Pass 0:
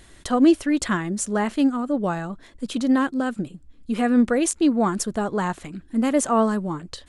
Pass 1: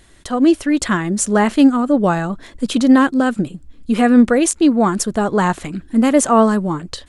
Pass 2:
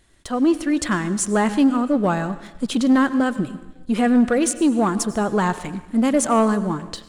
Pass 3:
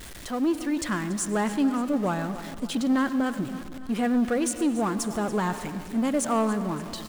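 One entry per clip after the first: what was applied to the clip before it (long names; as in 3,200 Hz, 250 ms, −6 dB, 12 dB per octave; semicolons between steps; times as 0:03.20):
automatic gain control gain up to 11 dB
dense smooth reverb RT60 1.1 s, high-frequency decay 0.9×, pre-delay 80 ms, DRR 14.5 dB; leveller curve on the samples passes 1; level −7.5 dB
converter with a step at zero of −28 dBFS; repeating echo 285 ms, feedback 55%, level −16 dB; level −8 dB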